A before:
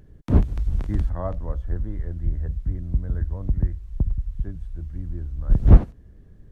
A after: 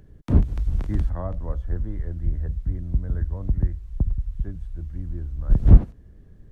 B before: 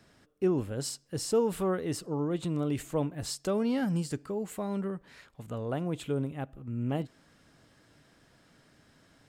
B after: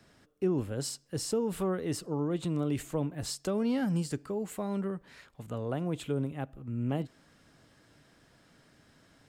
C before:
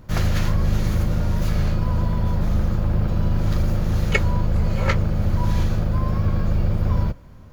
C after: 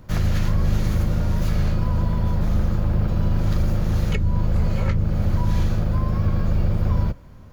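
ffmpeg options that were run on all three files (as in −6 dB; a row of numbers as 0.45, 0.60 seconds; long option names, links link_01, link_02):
-filter_complex "[0:a]acrossover=split=320[link_01][link_02];[link_02]acompressor=threshold=-31dB:ratio=10[link_03];[link_01][link_03]amix=inputs=2:normalize=0"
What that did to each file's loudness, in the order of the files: 0.0, −1.0, −0.5 LU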